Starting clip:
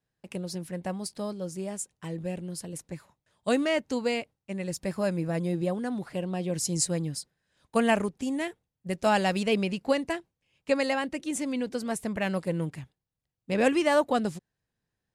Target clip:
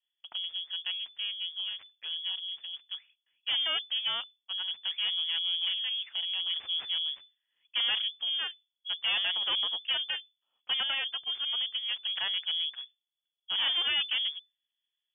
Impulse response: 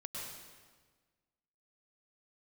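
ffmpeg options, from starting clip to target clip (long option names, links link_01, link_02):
-af "aeval=exprs='(tanh(17.8*val(0)+0.45)-tanh(0.45))/17.8':channel_layout=same,adynamicsmooth=sensitivity=6.5:basefreq=1500,lowpass=frequency=3000:width_type=q:width=0.5098,lowpass=frequency=3000:width_type=q:width=0.6013,lowpass=frequency=3000:width_type=q:width=0.9,lowpass=frequency=3000:width_type=q:width=2.563,afreqshift=-3500"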